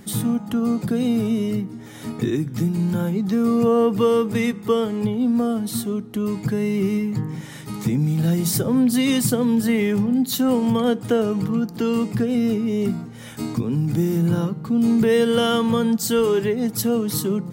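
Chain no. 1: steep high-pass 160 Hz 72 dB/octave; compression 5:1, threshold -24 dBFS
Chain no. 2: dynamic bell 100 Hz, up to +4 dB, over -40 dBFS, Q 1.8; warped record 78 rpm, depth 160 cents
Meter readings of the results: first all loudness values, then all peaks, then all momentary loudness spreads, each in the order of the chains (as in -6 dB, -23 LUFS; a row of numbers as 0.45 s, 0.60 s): -27.5 LUFS, -20.5 LUFS; -14.0 dBFS, -7.0 dBFS; 4 LU, 8 LU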